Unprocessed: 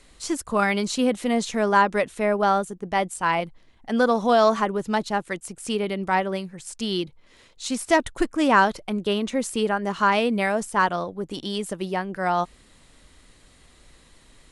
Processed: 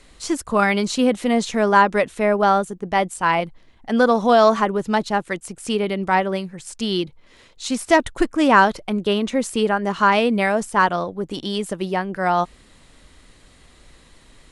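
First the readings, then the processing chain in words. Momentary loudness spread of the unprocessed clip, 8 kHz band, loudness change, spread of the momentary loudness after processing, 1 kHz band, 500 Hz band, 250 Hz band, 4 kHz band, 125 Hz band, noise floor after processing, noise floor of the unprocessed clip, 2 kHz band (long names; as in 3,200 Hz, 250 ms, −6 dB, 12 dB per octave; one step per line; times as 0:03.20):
11 LU, +1.5 dB, +4.0 dB, 11 LU, +4.0 dB, +4.0 dB, +4.0 dB, +3.0 dB, +4.0 dB, −51 dBFS, −55 dBFS, +4.0 dB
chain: high-shelf EQ 6,900 Hz −4.5 dB
level +4 dB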